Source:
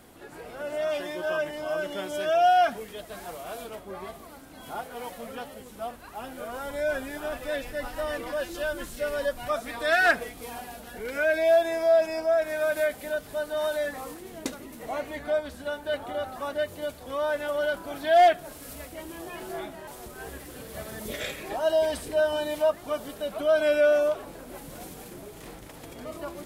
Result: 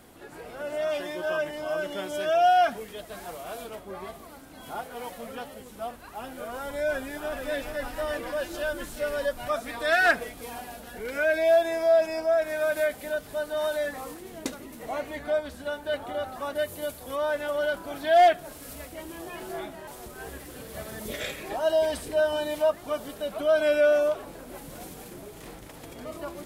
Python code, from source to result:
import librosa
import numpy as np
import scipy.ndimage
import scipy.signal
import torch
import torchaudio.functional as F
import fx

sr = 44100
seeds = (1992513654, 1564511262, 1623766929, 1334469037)

y = fx.echo_throw(x, sr, start_s=6.93, length_s=0.4, ms=430, feedback_pct=75, wet_db=-6.5)
y = fx.peak_eq(y, sr, hz=12000.0, db=9.5, octaves=1.1, at=(16.55, 17.16))